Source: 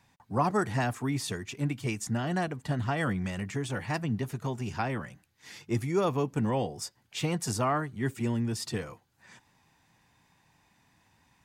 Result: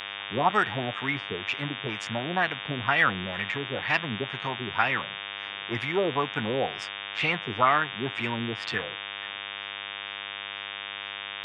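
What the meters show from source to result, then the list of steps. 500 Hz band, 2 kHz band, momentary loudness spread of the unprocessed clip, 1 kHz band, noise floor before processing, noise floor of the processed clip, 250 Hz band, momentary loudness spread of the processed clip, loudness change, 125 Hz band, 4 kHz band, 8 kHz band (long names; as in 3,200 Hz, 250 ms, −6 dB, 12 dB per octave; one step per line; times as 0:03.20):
+2.0 dB, +11.5 dB, 8 LU, +6.0 dB, −69 dBFS, −37 dBFS, −3.0 dB, 11 LU, +3.0 dB, −5.5 dB, +11.5 dB, below −10 dB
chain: auto-filter low-pass sine 2.1 Hz 390–2,800 Hz
hum with harmonics 100 Hz, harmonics 37, −44 dBFS 0 dB per octave
tilt shelving filter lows −8 dB, about 670 Hz
level +1.5 dB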